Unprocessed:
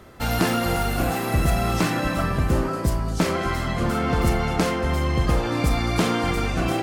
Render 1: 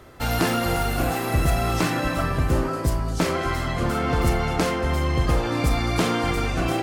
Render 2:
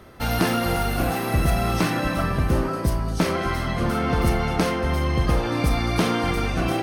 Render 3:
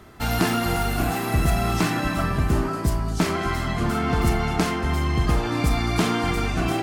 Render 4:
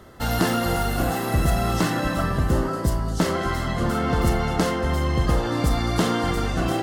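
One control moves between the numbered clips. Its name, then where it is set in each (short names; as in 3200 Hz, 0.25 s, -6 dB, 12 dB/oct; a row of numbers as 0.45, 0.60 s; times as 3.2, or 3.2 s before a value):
notch, frequency: 200, 7300, 530, 2400 Hz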